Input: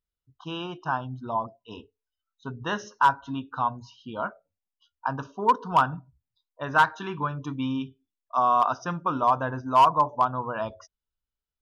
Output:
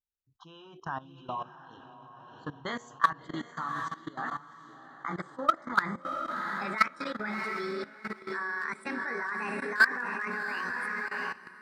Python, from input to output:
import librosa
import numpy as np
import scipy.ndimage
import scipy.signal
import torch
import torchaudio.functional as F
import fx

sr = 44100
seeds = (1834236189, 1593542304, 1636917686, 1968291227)

y = fx.pitch_glide(x, sr, semitones=10.0, runs='starting unshifted')
y = fx.echo_diffused(y, sr, ms=713, feedback_pct=44, wet_db=-6.0)
y = fx.level_steps(y, sr, step_db=17)